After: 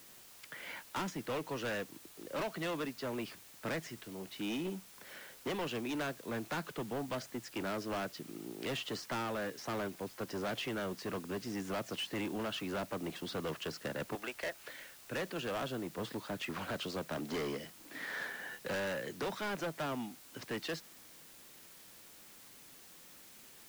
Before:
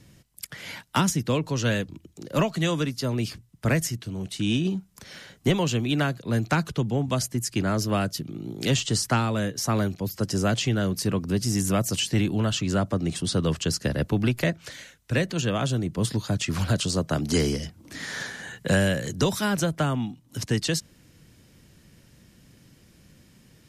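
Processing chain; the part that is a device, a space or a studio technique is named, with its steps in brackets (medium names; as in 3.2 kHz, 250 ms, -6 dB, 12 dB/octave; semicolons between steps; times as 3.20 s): 14.15–14.65 s: high-pass 600 Hz 12 dB/octave; aircraft radio (band-pass 340–2500 Hz; hard clipper -29.5 dBFS, distortion -7 dB; white noise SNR 16 dB); trim -4.5 dB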